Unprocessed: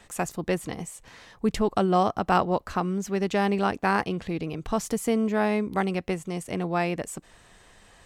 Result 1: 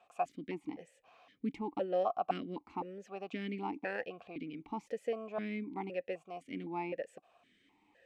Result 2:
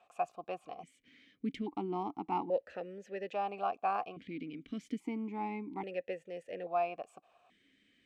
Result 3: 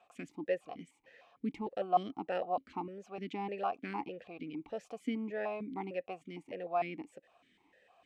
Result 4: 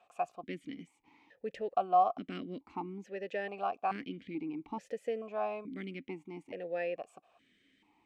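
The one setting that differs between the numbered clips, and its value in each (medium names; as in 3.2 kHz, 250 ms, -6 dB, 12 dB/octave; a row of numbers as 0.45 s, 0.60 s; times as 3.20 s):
stepped vowel filter, rate: 3.9 Hz, 1.2 Hz, 6.6 Hz, 2.3 Hz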